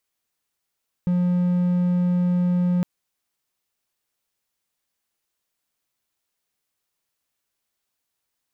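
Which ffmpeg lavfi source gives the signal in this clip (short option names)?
-f lavfi -i "aevalsrc='0.168*(1-4*abs(mod(178*t+0.25,1)-0.5))':d=1.76:s=44100"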